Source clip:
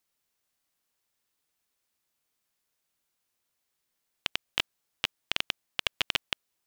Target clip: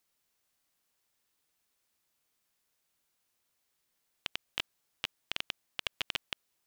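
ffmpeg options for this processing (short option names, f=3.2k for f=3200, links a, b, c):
-af "alimiter=limit=-15dB:level=0:latency=1:release=46,volume=1.5dB"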